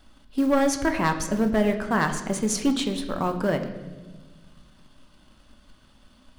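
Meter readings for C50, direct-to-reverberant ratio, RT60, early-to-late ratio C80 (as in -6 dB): 10.0 dB, 6.0 dB, 1.3 s, 11.5 dB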